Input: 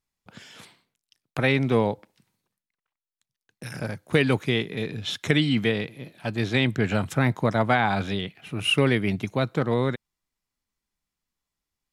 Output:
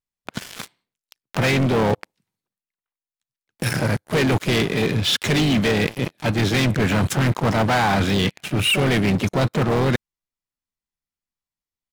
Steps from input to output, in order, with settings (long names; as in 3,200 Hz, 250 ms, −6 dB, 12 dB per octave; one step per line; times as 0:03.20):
pitch-shifted copies added −3 semitones −13 dB, +5 semitones −13 dB
leveller curve on the samples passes 5
reversed playback
downward compressor 5 to 1, threshold −18 dBFS, peak gain reduction 9.5 dB
reversed playback